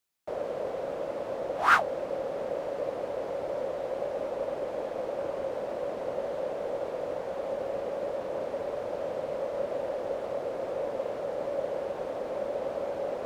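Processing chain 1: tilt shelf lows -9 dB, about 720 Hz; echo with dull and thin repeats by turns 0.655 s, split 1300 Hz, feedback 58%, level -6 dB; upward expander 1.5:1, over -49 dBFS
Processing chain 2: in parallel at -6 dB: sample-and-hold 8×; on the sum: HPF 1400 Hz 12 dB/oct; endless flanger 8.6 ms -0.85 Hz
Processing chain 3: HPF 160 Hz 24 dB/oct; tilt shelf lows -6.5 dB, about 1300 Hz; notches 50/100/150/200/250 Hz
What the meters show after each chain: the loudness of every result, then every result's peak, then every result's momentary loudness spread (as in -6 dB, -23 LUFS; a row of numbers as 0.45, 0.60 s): -30.5, -40.0, -35.0 LUFS; -3.0, -10.5, -7.5 dBFS; 11, 2, 2 LU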